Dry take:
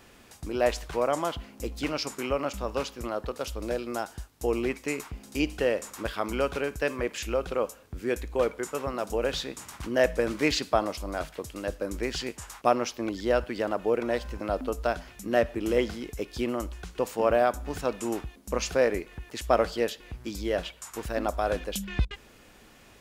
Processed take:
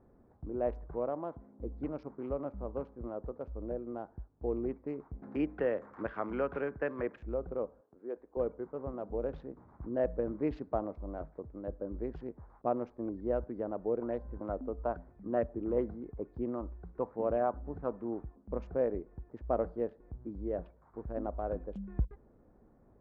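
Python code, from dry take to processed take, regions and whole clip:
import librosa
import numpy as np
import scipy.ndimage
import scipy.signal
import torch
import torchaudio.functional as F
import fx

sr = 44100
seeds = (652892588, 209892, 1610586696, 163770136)

y = fx.chain(x, sr, fx.median_filter(points=9),
    fx.highpass(hz=170.0, slope=6), at=(1.09, 1.59))
y = fx.chain(y, sr, fx.highpass(hz=88.0, slope=12),
    fx.peak_eq(hz=1800.0, db=13.0, octaves=1.6),
    fx.band_squash(depth_pct=40), at=(5.22, 7.16))
y = fx.chain(y, sr, fx.highpass(hz=450.0, slope=12),
    fx.high_shelf(hz=2300.0, db=-6.5), at=(7.81, 8.37))
y = fx.chain(y, sr, fx.highpass(hz=44.0, slope=12),
    fx.air_absorb(metres=89.0),
    fx.bell_lfo(hz=2.3, low_hz=940.0, high_hz=5400.0, db=9), at=(14.01, 18.51))
y = fx.wiener(y, sr, points=15)
y = scipy.signal.sosfilt(scipy.signal.bessel(2, 600.0, 'lowpass', norm='mag', fs=sr, output='sos'), y)
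y = y * librosa.db_to_amplitude(-5.0)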